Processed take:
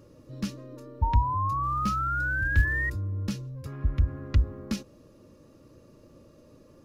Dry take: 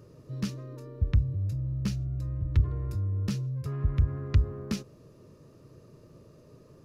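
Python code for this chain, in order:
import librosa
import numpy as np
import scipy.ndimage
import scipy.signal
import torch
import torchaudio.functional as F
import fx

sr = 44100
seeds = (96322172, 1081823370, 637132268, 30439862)

y = x + 0.53 * np.pad(x, (int(3.6 * sr / 1000.0), 0))[:len(x)]
y = fx.quant_float(y, sr, bits=4, at=(1.62, 2.89), fade=0.02)
y = fx.spec_paint(y, sr, seeds[0], shape='rise', start_s=1.02, length_s=1.88, low_hz=900.0, high_hz=1900.0, level_db=-29.0)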